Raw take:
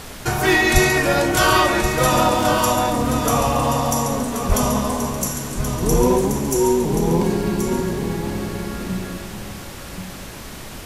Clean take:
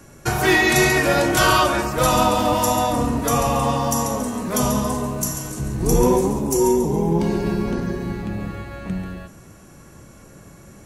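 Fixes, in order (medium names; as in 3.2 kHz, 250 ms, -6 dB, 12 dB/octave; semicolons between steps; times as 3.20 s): 0.73–0.85 s: high-pass 140 Hz 24 dB/octave; 4.48–4.60 s: high-pass 140 Hz 24 dB/octave; noise print and reduce 11 dB; inverse comb 1079 ms -8 dB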